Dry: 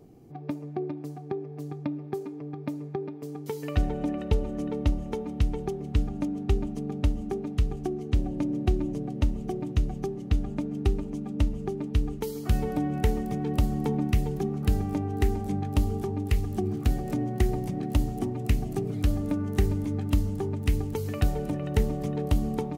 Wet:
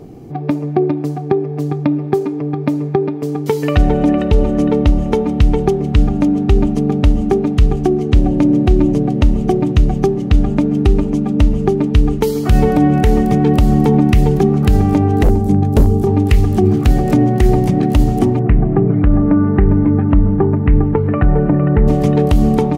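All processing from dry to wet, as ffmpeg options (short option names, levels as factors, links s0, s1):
-filter_complex "[0:a]asettb=1/sr,asplit=3[s0][s1][s2];[s0]atrim=end=15.234[s3];[s1]atrim=start=15.23:end=16.07,asetpts=PTS-STARTPTS,afade=t=in:d=0.004:c=qsin,afade=t=out:st=0.836:d=0.004:c=qsin,equalizer=f=2200:w=0.44:g=-11.5,aeval=exprs='0.106*(abs(mod(val(0)/0.106+3,4)-2)-1)':c=same[s4];[s2]atrim=start=16.066[s5];[s3][s4]acrossfade=d=0.004:c1=hsin:c2=qsin[s6];[s6][s5]acrossfade=d=0.004:c1=qsin:c2=hsin,asettb=1/sr,asplit=3[s7][s8][s9];[s7]atrim=end=18.394[s10];[s8]atrim=start=18.39:end=21.88,asetpts=PTS-STARTPTS,afade=t=in:d=0.004:c=qsin,afade=t=out:st=3.486:d=0.004:c=qsin,lowpass=f=1800:w=0.5412,lowpass=f=1800:w=1.3066,aecho=1:1:6:0.36,atrim=end_sample=153909[s11];[s9]atrim=start=21.876[s12];[s10][s11]acrossfade=d=0.004:c1=hsin:c2=qsin[s13];[s13][s12]acrossfade=d=0.004:c1=qsin:c2=hsin,highshelf=f=6300:g=-7.5,alimiter=level_in=8.41:limit=0.891:release=50:level=0:latency=1,volume=0.891"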